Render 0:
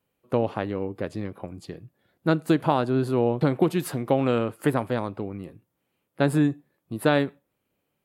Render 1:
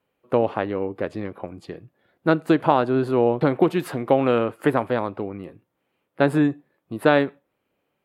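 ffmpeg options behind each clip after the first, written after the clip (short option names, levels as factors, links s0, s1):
-af "bass=f=250:g=-7,treble=f=4000:g=-11,volume=1.78"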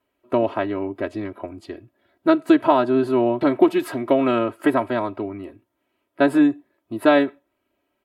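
-af "aecho=1:1:3.1:0.88,volume=0.891"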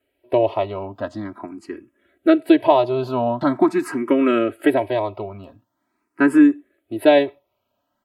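-filter_complex "[0:a]asplit=2[s0][s1];[s1]afreqshift=0.44[s2];[s0][s2]amix=inputs=2:normalize=1,volume=1.58"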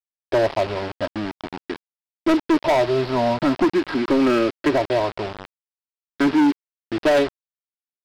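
-af "aresample=11025,acrusher=bits=4:mix=0:aa=0.000001,aresample=44100,adynamicsmooth=sensitivity=2:basefreq=3600,asoftclip=type=hard:threshold=0.178,volume=1.19"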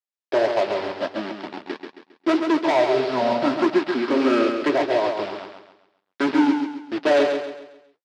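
-filter_complex "[0:a]flanger=delay=4.8:depth=9.7:regen=-51:speed=1.6:shape=sinusoidal,highpass=240,lowpass=7000,asplit=2[s0][s1];[s1]aecho=0:1:135|270|405|540|675:0.501|0.195|0.0762|0.0297|0.0116[s2];[s0][s2]amix=inputs=2:normalize=0,volume=1.41"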